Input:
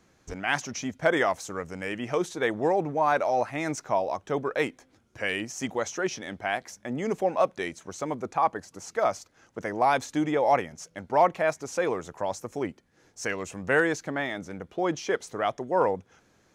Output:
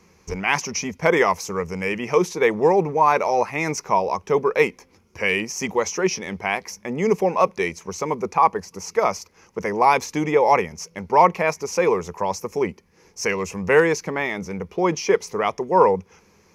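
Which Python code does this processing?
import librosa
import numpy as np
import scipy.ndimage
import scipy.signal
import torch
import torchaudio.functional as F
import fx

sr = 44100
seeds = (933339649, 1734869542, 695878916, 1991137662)

y = fx.ripple_eq(x, sr, per_octave=0.82, db=10)
y = F.gain(torch.from_numpy(y), 6.0).numpy()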